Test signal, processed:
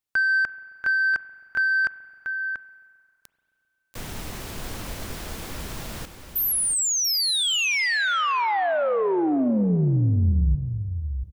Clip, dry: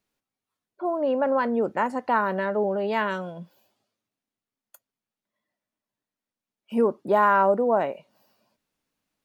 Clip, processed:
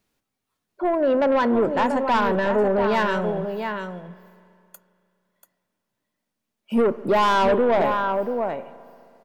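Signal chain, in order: on a send: echo 0.687 s -9 dB; on the sum: soft clip -21 dBFS; low shelf 220 Hz +4.5 dB; spring tank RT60 2.5 s, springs 33/44 ms, chirp 75 ms, DRR 15 dB; gain +6 dB

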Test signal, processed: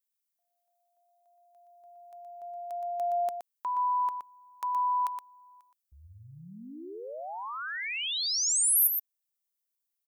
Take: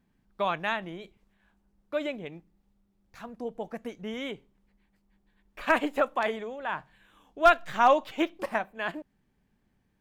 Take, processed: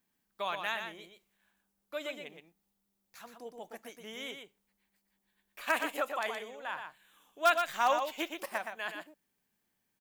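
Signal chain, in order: RIAA curve recording; echo 0.12 s -6.5 dB; gain -7 dB

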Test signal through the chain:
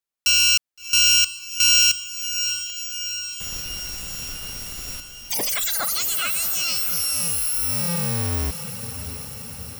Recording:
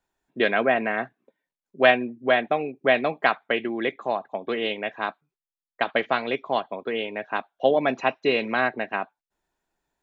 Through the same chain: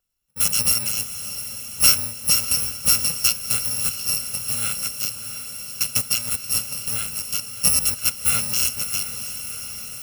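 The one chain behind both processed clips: FFT order left unsorted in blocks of 128 samples; on a send: diffused feedback echo 0.698 s, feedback 68%, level -10.5 dB; on the sum: gain +1.5 dB

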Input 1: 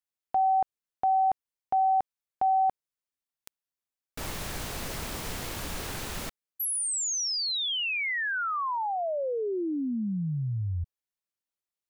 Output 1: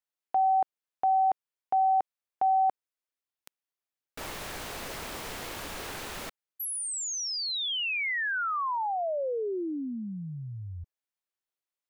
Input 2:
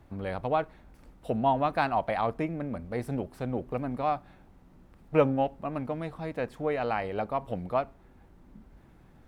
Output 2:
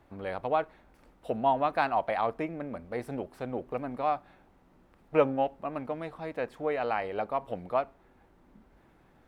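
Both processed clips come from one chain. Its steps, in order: tone controls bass -9 dB, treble -4 dB

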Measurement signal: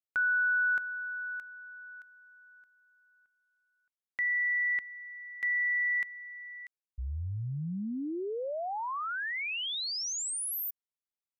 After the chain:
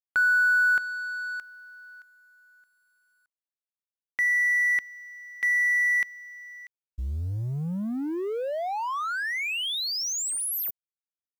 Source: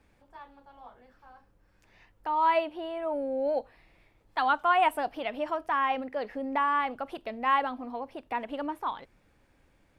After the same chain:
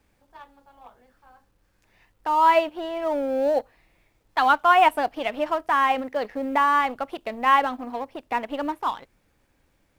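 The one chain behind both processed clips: G.711 law mismatch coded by A; gain +7.5 dB

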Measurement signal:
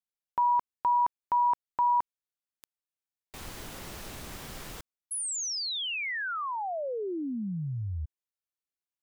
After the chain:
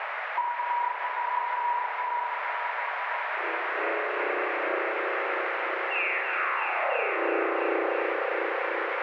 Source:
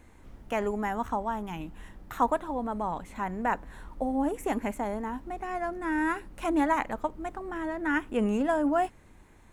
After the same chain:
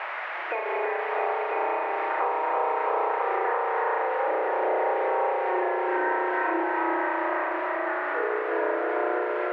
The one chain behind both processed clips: bin magnitudes rounded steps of 30 dB; spring tank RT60 3.1 s, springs 33 ms, chirp 40 ms, DRR -10 dB; spectral noise reduction 10 dB; brick-wall FIR band-pass 320–2800 Hz; treble ducked by the level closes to 1500 Hz, closed at -17.5 dBFS; tremolo 2.3 Hz, depth 68%; vocal rider within 4 dB; band noise 580–2200 Hz -40 dBFS; compressor 5:1, threshold -34 dBFS; multi-head echo 0.331 s, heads all three, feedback 52%, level -8 dB; gain +7 dB

